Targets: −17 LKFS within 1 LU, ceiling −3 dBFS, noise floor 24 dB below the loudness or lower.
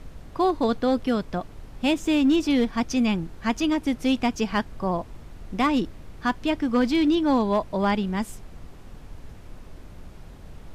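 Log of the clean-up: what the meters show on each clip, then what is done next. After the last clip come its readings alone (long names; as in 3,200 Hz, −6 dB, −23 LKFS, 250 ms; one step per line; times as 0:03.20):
share of clipped samples 0.4%; peaks flattened at −14.5 dBFS; background noise floor −44 dBFS; target noise floor −49 dBFS; integrated loudness −24.5 LKFS; sample peak −14.5 dBFS; target loudness −17.0 LKFS
→ clipped peaks rebuilt −14.5 dBFS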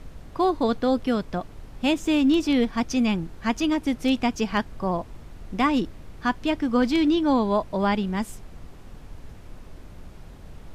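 share of clipped samples 0.0%; background noise floor −44 dBFS; target noise floor −48 dBFS
→ noise reduction from a noise print 6 dB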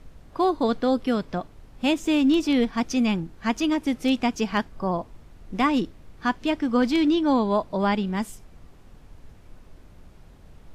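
background noise floor −49 dBFS; integrated loudness −24.0 LKFS; sample peak −8.5 dBFS; target loudness −17.0 LKFS
→ level +7 dB
brickwall limiter −3 dBFS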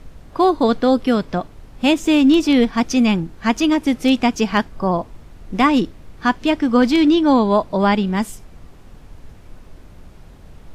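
integrated loudness −17.0 LKFS; sample peak −3.0 dBFS; background noise floor −42 dBFS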